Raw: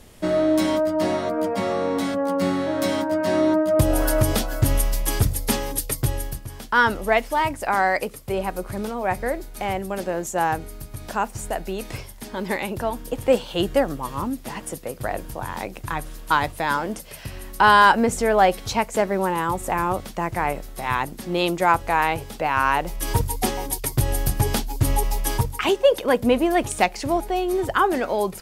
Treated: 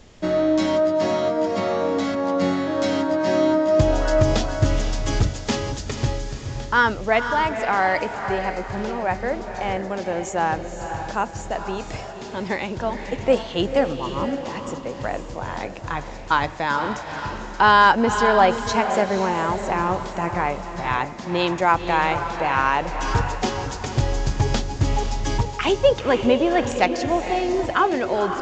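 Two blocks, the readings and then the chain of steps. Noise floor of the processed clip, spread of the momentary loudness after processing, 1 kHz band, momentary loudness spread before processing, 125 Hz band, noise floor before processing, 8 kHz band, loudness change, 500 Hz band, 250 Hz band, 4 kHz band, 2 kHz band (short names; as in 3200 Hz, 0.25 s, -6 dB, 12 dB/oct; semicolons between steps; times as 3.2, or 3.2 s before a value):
-34 dBFS, 11 LU, +1.0 dB, 11 LU, +0.5 dB, -40 dBFS, -5.5 dB, +0.5 dB, +1.0 dB, +0.5 dB, +1.0 dB, +1.0 dB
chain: diffused feedback echo 0.505 s, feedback 41%, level -7.5 dB; downsampling 16000 Hz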